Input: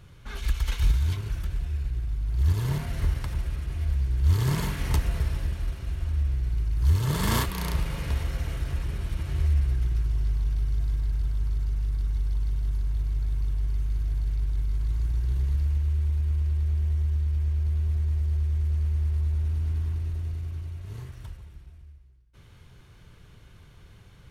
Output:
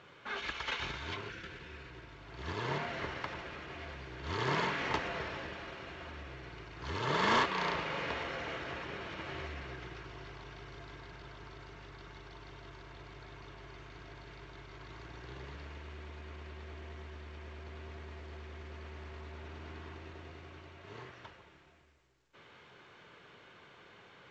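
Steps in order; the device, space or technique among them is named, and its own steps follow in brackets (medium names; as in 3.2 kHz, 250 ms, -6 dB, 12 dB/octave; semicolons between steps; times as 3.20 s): spectral replace 1.32–2.10 s, 550–1300 Hz after; telephone (band-pass 400–3000 Hz; saturation -25.5 dBFS, distortion -18 dB; trim +5 dB; µ-law 128 kbps 16 kHz)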